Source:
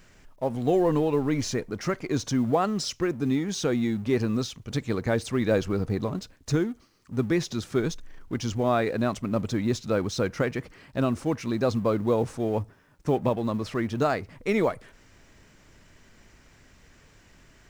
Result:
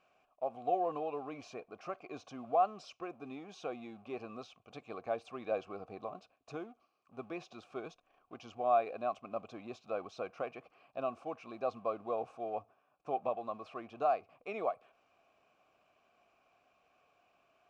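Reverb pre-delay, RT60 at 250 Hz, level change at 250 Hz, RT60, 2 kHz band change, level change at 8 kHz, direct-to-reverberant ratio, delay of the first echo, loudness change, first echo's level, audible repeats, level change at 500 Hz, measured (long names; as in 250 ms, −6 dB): no reverb audible, no reverb audible, −21.5 dB, no reverb audible, −16.0 dB, below −25 dB, no reverb audible, no echo audible, −11.5 dB, no echo audible, no echo audible, −11.0 dB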